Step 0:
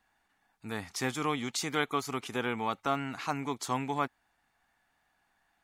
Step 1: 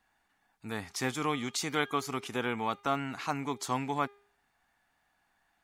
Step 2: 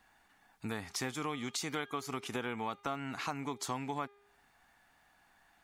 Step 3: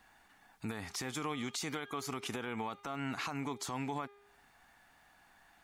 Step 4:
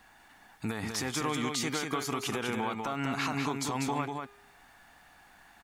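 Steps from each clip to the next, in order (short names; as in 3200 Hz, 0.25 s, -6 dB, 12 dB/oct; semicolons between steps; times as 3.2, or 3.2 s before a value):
de-hum 405.5 Hz, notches 15
compressor 4:1, threshold -43 dBFS, peak gain reduction 16 dB; gain +6.5 dB
limiter -31.5 dBFS, peak gain reduction 10 dB; gain +3 dB
echo 0.194 s -4.5 dB; gain +5.5 dB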